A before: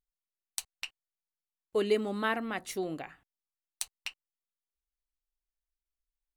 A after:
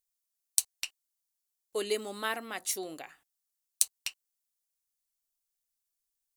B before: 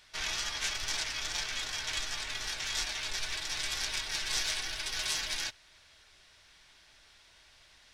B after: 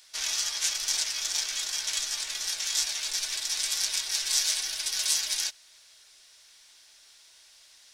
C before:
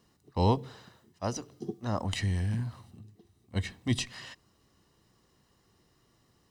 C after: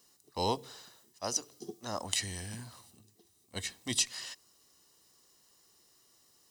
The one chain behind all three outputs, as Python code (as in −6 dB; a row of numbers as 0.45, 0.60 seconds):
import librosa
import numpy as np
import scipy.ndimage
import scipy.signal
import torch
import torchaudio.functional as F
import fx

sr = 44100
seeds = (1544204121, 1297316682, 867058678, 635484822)

y = fx.bass_treble(x, sr, bass_db=-12, treble_db=15)
y = y * librosa.db_to_amplitude(-3.0)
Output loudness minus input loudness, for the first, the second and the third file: +1.5, +6.0, −3.0 LU